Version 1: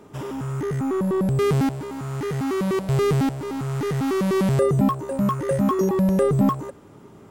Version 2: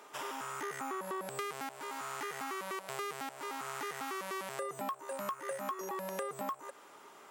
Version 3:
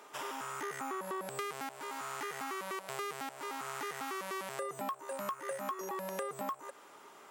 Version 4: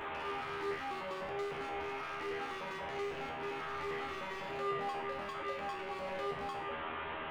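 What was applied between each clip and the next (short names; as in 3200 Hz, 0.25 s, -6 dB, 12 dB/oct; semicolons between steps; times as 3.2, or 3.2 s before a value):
HPF 910 Hz 12 dB/oct; dynamic EQ 4300 Hz, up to -4 dB, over -47 dBFS, Q 1.1; compressor 6:1, threshold -38 dBFS, peak gain reduction 14 dB; gain +2 dB
nothing audible
delta modulation 16 kbps, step -35.5 dBFS; hard clip -38 dBFS, distortion -10 dB; resonator 80 Hz, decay 0.66 s, harmonics all, mix 90%; gain +11.5 dB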